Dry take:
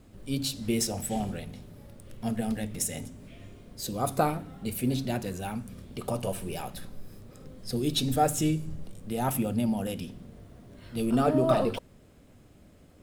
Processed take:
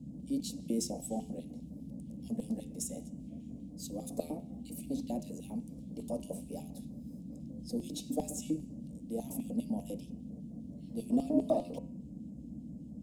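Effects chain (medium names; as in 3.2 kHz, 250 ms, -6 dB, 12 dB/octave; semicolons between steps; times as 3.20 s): LFO high-pass square 5 Hz 370–2900 Hz; FFT filter 280 Hz 0 dB, 1.8 kHz -20 dB, 3.4 kHz -20 dB, 6.8 kHz -8 dB, 16 kHz -16 dB; band noise 59–280 Hz -43 dBFS; static phaser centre 380 Hz, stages 6; de-hum 86.74 Hz, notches 34; trim +1 dB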